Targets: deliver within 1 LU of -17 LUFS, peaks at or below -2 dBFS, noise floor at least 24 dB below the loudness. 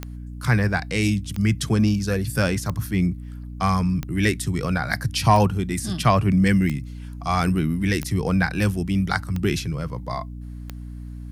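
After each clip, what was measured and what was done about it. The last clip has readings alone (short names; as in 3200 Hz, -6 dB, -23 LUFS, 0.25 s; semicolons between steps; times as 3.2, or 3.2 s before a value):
clicks 9; hum 60 Hz; harmonics up to 300 Hz; hum level -33 dBFS; loudness -22.5 LUFS; peak -6.0 dBFS; loudness target -17.0 LUFS
-> de-click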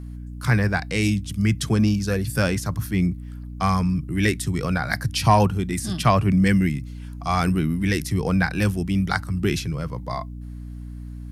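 clicks 0; hum 60 Hz; harmonics up to 300 Hz; hum level -33 dBFS
-> notches 60/120/180/240/300 Hz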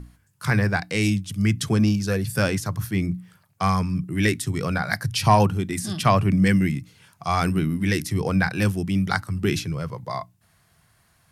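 hum none; loudness -23.0 LUFS; peak -4.5 dBFS; loudness target -17.0 LUFS
-> gain +6 dB; limiter -2 dBFS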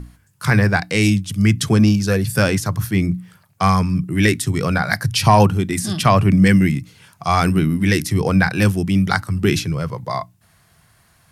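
loudness -17.5 LUFS; peak -2.0 dBFS; noise floor -57 dBFS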